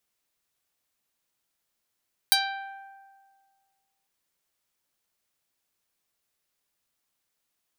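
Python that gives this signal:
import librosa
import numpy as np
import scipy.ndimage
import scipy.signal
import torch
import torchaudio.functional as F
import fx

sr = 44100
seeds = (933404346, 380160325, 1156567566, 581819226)

y = fx.pluck(sr, length_s=1.75, note=79, decay_s=1.78, pick=0.31, brightness='medium')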